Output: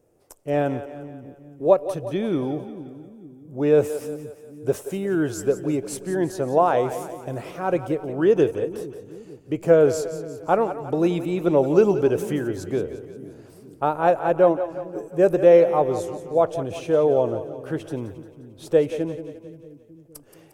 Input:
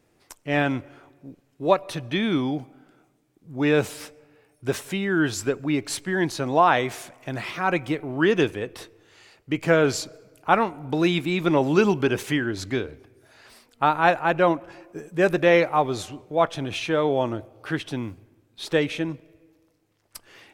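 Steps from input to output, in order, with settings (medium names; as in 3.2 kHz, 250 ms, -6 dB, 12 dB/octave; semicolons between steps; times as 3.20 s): graphic EQ 250/500/1000/2000/4000 Hz -4/+8/-4/-10/-11 dB; two-band feedback delay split 320 Hz, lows 452 ms, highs 176 ms, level -12 dB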